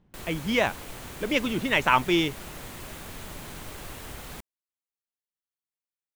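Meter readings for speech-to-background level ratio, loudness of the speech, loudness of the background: 15.0 dB, -25.5 LUFS, -40.5 LUFS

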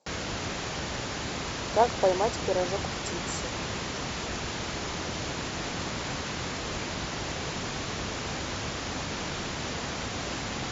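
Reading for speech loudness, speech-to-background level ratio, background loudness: -29.5 LUFS, 3.5 dB, -33.0 LUFS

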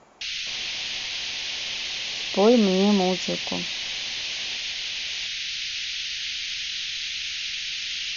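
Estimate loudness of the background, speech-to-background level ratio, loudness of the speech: -27.5 LUFS, 5.0 dB, -22.5 LUFS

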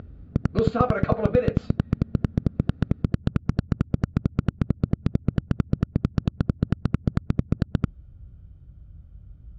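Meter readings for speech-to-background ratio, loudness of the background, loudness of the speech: 0.5 dB, -27.0 LUFS, -26.5 LUFS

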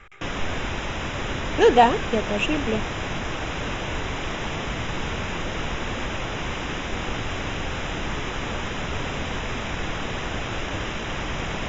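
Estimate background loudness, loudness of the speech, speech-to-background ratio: -29.0 LUFS, -21.0 LUFS, 8.0 dB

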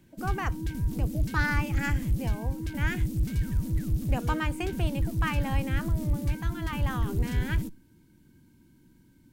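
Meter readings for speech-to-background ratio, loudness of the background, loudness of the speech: -4.5 dB, -31.0 LUFS, -35.5 LUFS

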